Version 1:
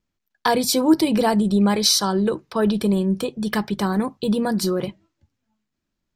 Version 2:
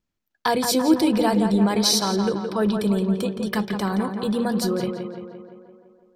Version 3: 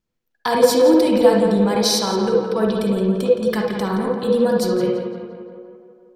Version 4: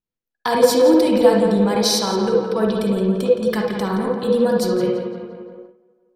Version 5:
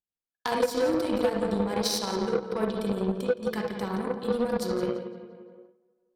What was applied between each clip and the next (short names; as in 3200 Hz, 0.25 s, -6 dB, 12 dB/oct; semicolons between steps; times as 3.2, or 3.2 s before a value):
tape echo 0.17 s, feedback 67%, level -5.5 dB, low-pass 2800 Hz; gain -2.5 dB
on a send at -2 dB: bell 490 Hz +15 dB 0.23 oct + reverb RT60 0.35 s, pre-delay 47 ms
gate -38 dBFS, range -12 dB
added harmonics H 7 -21 dB, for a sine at -1 dBFS; compressor 6:1, threshold -18 dBFS, peak gain reduction 11 dB; gain -3.5 dB